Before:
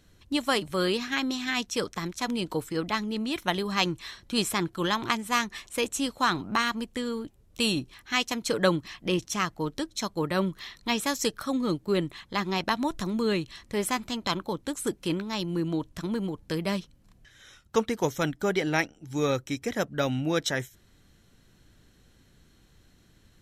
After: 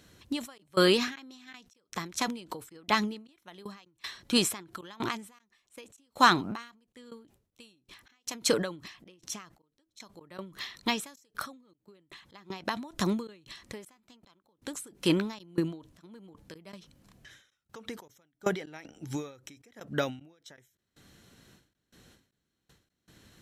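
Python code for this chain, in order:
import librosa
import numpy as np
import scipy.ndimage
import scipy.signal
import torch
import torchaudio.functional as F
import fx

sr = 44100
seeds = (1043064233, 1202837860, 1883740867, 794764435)

y = fx.highpass(x, sr, hz=150.0, slope=6)
y = fx.step_gate(y, sr, bpm=78, pattern='xxx.xx..x.x', floor_db=-24.0, edge_ms=4.5)
y = fx.end_taper(y, sr, db_per_s=120.0)
y = F.gain(torch.from_numpy(y), 5.0).numpy()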